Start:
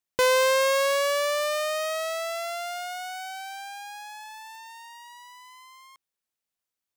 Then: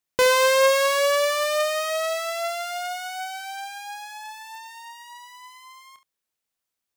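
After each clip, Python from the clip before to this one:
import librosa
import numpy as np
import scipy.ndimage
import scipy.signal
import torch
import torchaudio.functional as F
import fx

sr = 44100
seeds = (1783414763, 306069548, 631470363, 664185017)

y = fx.room_early_taps(x, sr, ms=(28, 71), db=(-10.5, -13.5))
y = F.gain(torch.from_numpy(y), 3.0).numpy()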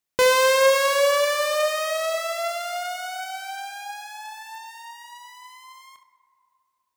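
y = fx.rev_plate(x, sr, seeds[0], rt60_s=2.6, hf_ratio=0.3, predelay_ms=0, drr_db=10.5)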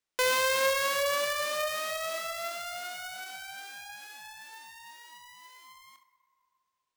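y = scipy.signal.sosfilt(scipy.signal.butter(2, 630.0, 'highpass', fs=sr, output='sos'), x)
y = fx.peak_eq(y, sr, hz=810.0, db=-8.0, octaves=0.46)
y = np.repeat(y[::3], 3)[:len(y)]
y = F.gain(torch.from_numpy(y), -5.5).numpy()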